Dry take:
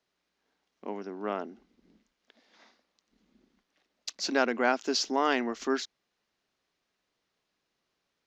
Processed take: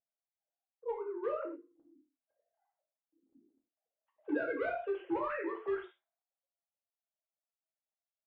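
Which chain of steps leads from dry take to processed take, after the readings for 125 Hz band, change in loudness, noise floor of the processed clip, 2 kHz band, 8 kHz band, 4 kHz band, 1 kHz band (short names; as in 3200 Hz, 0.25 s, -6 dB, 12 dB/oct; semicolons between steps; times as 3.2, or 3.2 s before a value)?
n/a, -7.5 dB, under -85 dBFS, -9.5 dB, under -40 dB, under -25 dB, -9.5 dB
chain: sine-wave speech; low-pass opened by the level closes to 330 Hz, open at -26 dBFS; compressor 16:1, threshold -30 dBFS, peak gain reduction 9.5 dB; hard clip -29.5 dBFS, distortion -18 dB; flange 0.62 Hz, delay 6.9 ms, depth 3.9 ms, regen -80%; air absorption 440 m; non-linear reverb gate 0.15 s falling, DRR -0.5 dB; gain +2.5 dB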